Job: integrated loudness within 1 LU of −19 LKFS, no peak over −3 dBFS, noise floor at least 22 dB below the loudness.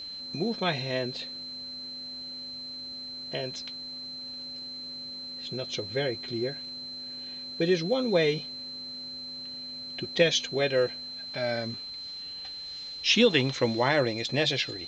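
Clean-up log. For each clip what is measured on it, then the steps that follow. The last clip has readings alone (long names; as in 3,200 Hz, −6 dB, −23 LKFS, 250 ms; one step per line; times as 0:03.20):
interfering tone 4,100 Hz; level of the tone −37 dBFS; integrated loudness −29.5 LKFS; sample peak −8.0 dBFS; target loudness −19.0 LKFS
→ notch filter 4,100 Hz, Q 30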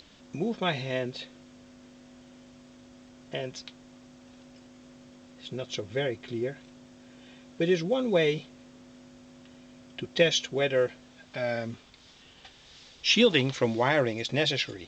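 interfering tone none found; integrated loudness −28.0 LKFS; sample peak −8.0 dBFS; target loudness −19.0 LKFS
→ level +9 dB
brickwall limiter −3 dBFS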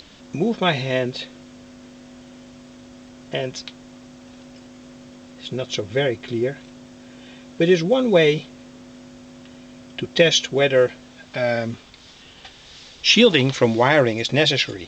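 integrated loudness −19.5 LKFS; sample peak −3.0 dBFS; background noise floor −46 dBFS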